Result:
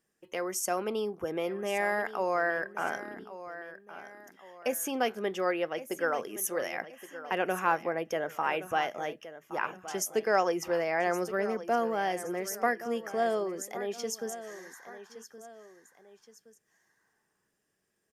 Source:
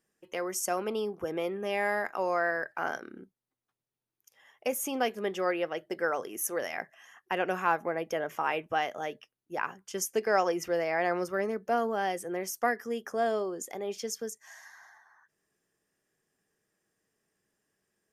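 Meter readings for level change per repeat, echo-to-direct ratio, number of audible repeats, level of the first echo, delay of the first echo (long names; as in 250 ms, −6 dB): −7.5 dB, −13.5 dB, 2, −14.0 dB, 1,120 ms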